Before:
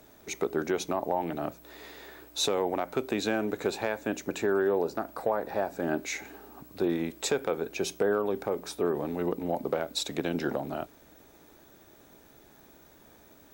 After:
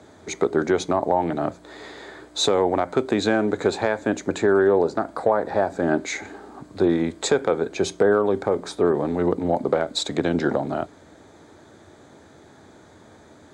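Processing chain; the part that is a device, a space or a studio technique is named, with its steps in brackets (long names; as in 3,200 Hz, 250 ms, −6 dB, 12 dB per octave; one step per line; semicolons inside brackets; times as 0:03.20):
car door speaker (loudspeaker in its box 88–7,900 Hz, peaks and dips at 90 Hz +10 dB, 2,700 Hz −10 dB, 5,600 Hz −8 dB)
level +8.5 dB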